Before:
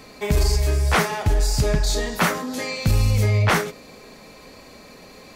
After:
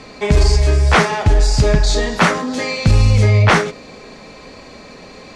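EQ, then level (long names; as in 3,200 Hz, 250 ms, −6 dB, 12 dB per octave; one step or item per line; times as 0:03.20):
Bessel low-pass filter 6,100 Hz, order 6
+7.0 dB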